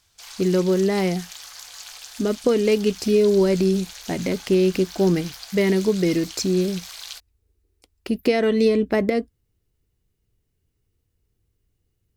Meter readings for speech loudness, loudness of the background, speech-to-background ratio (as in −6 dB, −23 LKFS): −21.5 LKFS, −37.5 LKFS, 16.0 dB